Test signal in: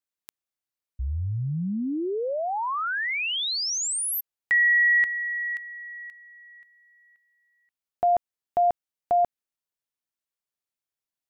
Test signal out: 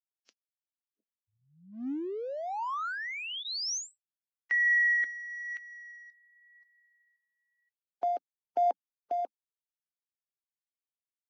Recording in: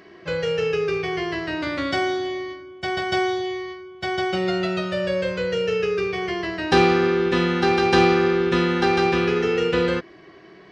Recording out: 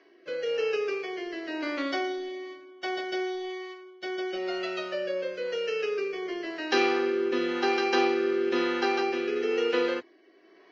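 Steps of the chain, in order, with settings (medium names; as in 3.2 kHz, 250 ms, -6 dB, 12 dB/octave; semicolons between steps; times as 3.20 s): Chebyshev band-pass 260–6200 Hz, order 4; band-stop 3.6 kHz, Q 16; in parallel at -5 dB: crossover distortion -39 dBFS; on the sum: rotary cabinet horn 1 Hz; trim -7.5 dB; Vorbis 32 kbps 16 kHz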